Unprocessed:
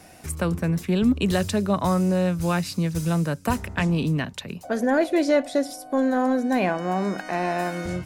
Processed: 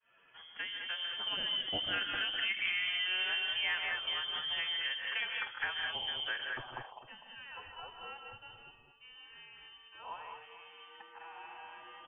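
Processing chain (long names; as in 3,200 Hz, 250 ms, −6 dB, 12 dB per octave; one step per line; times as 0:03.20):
fade in at the beginning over 0.91 s
source passing by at 0:02.06, 17 m/s, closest 12 metres
reversed playback
upward compression, threshold −32 dBFS
reversed playback
voice inversion scrambler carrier 3,300 Hz
phase-vocoder stretch with locked phases 1.5×
low-pass filter sweep 1,700 Hz → 850 Hz, 0:06.34–0:06.87
multi-tap delay 75/128/152/201/209/452 ms −18.5/−14.5/−9/−9/−9/−15 dB
downward compressor 3 to 1, threshold −34 dBFS, peak gain reduction 10 dB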